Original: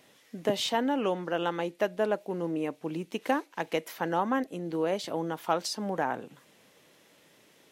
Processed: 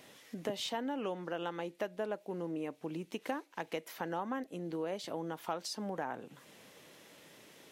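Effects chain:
downward compressor 2 to 1, threshold −47 dBFS, peak gain reduction 14 dB
level +3 dB

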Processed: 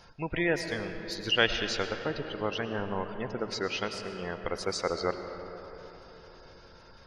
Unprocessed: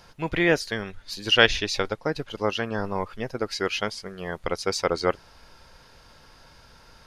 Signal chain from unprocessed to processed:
gate on every frequency bin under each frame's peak −25 dB strong
in parallel at −0.5 dB: downward compressor, threshold −31 dBFS, peak gain reduction 19 dB
on the sum: convolution reverb RT60 4.1 s, pre-delay 65 ms, DRR 7 dB
level −8.5 dB

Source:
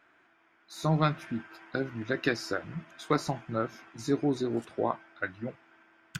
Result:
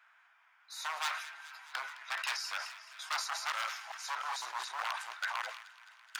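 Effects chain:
0:03.01–0:05.42: delay that plays each chunk backwards 303 ms, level −1.5 dB
wave folding −26 dBFS
Butterworth high-pass 830 Hz 36 dB per octave
delay with a high-pass on its return 213 ms, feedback 70%, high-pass 1,700 Hz, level −15 dB
level that may fall only so fast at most 72 dB per second

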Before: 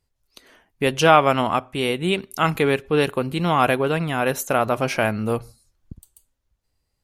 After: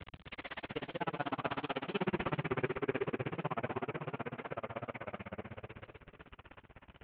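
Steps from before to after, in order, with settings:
linear delta modulator 16 kbit/s, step −19 dBFS
source passing by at 0:01.98, 26 m/s, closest 1.3 metres
high-pass filter 65 Hz
reversed playback
downward compressor 12 to 1, threshold −45 dBFS, peak gain reduction 27 dB
reversed playback
pitch vibrato 0.71 Hz 6 cents
on a send: echo with a time of its own for lows and highs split 300 Hz, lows 99 ms, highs 257 ms, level −4.5 dB
on the sum: granular cloud 41 ms, grains 16 per second, spray 10 ms, pitch spread up and down by 0 semitones
feedback echo with a swinging delay time 137 ms, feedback 32%, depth 204 cents, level −13 dB
level +16 dB

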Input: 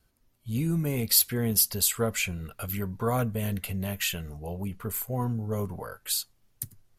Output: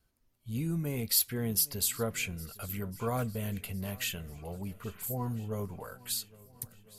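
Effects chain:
0:04.84–0:05.44: all-pass dispersion highs, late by 103 ms, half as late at 2,700 Hz
on a send: feedback echo with a long and a short gap by turns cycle 1,353 ms, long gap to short 1.5 to 1, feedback 41%, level −21.5 dB
on the sum: level −5.5 dB

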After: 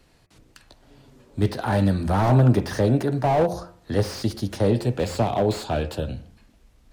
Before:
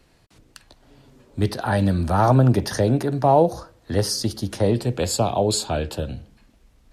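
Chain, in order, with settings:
hum removal 87.84 Hz, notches 30
slew-rate limiting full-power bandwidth 88 Hz

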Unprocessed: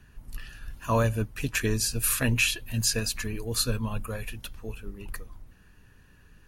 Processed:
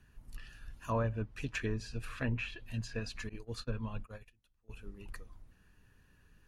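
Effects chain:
treble cut that deepens with the level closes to 1,800 Hz, closed at −21 dBFS
0:03.29–0:04.71: noise gate −31 dBFS, range −26 dB
level −8.5 dB

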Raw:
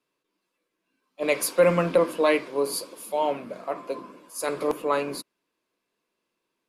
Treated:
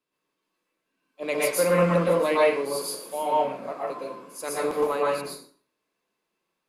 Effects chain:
dense smooth reverb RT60 0.5 s, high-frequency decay 0.8×, pre-delay 105 ms, DRR −5.5 dB
level −5.5 dB

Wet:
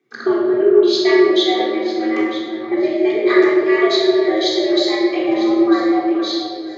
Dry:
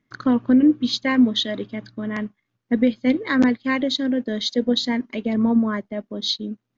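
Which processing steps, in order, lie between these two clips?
fade-out on the ending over 1.00 s
downward compressor, threshold −19 dBFS, peak gain reduction 8 dB
on a send: delay that swaps between a low-pass and a high-pass 475 ms, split 1,600 Hz, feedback 54%, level −8 dB
on the sum: frequency shifter +110 Hz
rectangular room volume 1,100 cubic metres, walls mixed, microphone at 3.7 metres

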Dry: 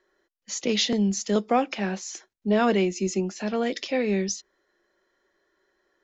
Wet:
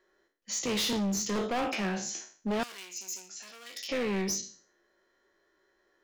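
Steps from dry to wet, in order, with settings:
peak hold with a decay on every bin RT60 0.44 s
hard clipping −25.5 dBFS, distortion −6 dB
0:02.63–0:03.89: first difference
level −2 dB

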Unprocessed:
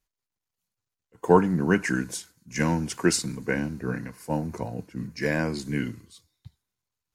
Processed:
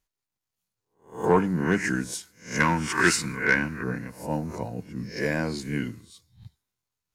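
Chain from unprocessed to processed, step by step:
peak hold with a rise ahead of every peak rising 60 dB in 0.38 s
0:02.60–0:03.84: flat-topped bell 1,600 Hz +11.5 dB
soft clipping −8.5 dBFS, distortion −17 dB
level −1.5 dB

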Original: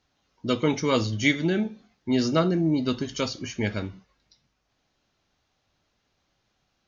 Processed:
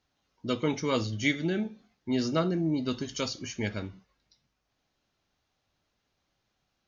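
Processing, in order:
0:01.03–0:01.63: notch filter 1,000 Hz, Q 6.4
0:02.91–0:03.69: high-shelf EQ 5,300 Hz +7.5 dB
level −5 dB

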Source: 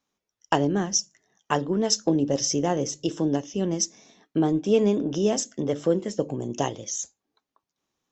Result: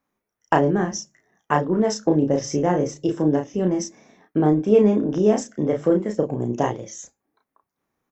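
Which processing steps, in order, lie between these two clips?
flat-topped bell 4,600 Hz −12 dB
double-tracking delay 33 ms −4 dB
level +3.5 dB

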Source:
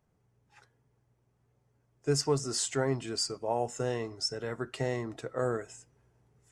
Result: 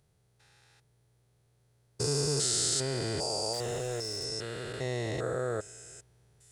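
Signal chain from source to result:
spectrum averaged block by block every 400 ms
graphic EQ with 15 bands 250 Hz −8 dB, 1,000 Hz −5 dB, 4,000 Hz +10 dB, 10,000 Hz +11 dB
0:03.53–0:04.25: hard clipping −34.5 dBFS, distortion −19 dB
level +4.5 dB

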